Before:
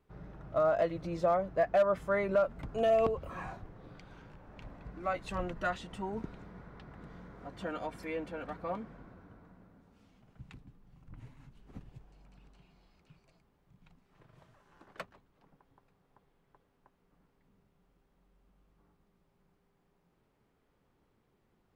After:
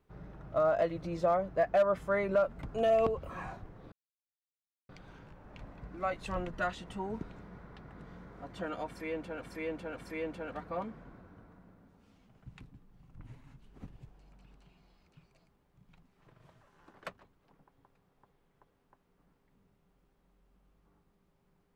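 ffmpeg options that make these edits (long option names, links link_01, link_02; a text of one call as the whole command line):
ffmpeg -i in.wav -filter_complex "[0:a]asplit=4[link_01][link_02][link_03][link_04];[link_01]atrim=end=3.92,asetpts=PTS-STARTPTS,afade=type=out:start_time=3.916:duration=0.004:curve=hsin,apad=pad_dur=0.97[link_05];[link_02]atrim=start=3.92:end=8.452,asetpts=PTS-STARTPTS,afade=type=in:duration=0.004:curve=hsin[link_06];[link_03]atrim=start=7.898:end=8.452[link_07];[link_04]atrim=start=7.898[link_08];[link_05][link_06]concat=n=2:v=0:a=1[link_09];[link_09][link_07]acrossfade=duration=0.004:curve1=hsin:curve2=hsin[link_10];[link_10][link_08]acrossfade=duration=0.004:curve1=hsin:curve2=hsin" out.wav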